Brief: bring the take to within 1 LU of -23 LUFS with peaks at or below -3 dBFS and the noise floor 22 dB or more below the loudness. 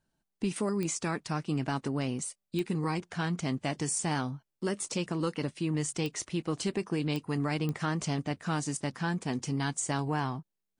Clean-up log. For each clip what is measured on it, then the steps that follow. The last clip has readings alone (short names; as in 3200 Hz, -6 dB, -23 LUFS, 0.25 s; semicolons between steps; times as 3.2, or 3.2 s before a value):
clicks 5; loudness -32.5 LUFS; peak -16.5 dBFS; loudness target -23.0 LUFS
-> de-click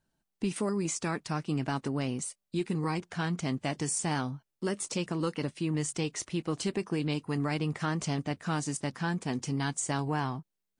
clicks 0; loudness -32.5 LUFS; peak -21.0 dBFS; loudness target -23.0 LUFS
-> gain +9.5 dB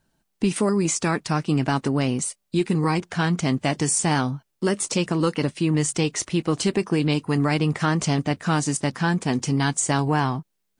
loudness -23.0 LUFS; peak -11.5 dBFS; noise floor -75 dBFS